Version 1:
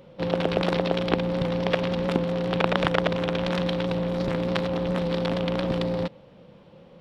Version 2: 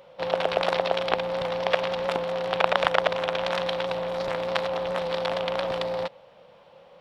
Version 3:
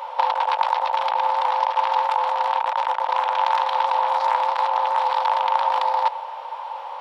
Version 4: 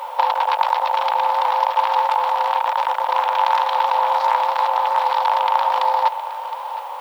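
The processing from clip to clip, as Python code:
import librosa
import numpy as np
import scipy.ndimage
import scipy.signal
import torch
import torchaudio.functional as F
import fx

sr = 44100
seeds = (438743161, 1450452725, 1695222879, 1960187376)

y1 = fx.low_shelf_res(x, sr, hz=430.0, db=-13.0, q=1.5)
y1 = y1 * librosa.db_to_amplitude(1.5)
y2 = fx.over_compress(y1, sr, threshold_db=-34.0, ratio=-1.0)
y2 = fx.highpass_res(y2, sr, hz=910.0, q=11.0)
y2 = y2 * librosa.db_to_amplitude(6.0)
y3 = fx.dmg_noise_colour(y2, sr, seeds[0], colour='blue', level_db=-57.0)
y3 = y3 + 10.0 ** (-14.5 / 20.0) * np.pad(y3, (int(715 * sr / 1000.0), 0))[:len(y3)]
y3 = y3 * librosa.db_to_amplitude(2.5)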